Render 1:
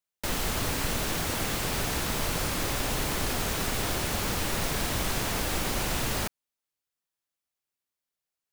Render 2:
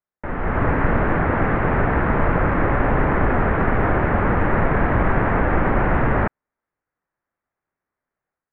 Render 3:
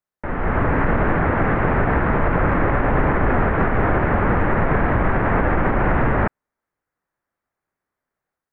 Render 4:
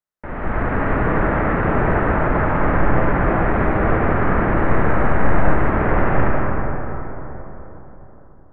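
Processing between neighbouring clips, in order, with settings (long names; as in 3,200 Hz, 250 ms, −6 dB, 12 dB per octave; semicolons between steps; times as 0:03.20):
Butterworth low-pass 1,900 Hz 36 dB per octave; automatic gain control gain up to 9.5 dB; level +3.5 dB
brickwall limiter −10 dBFS, peak gain reduction 5.5 dB; level +1.5 dB
convolution reverb RT60 3.9 s, pre-delay 35 ms, DRR −3 dB; level −4.5 dB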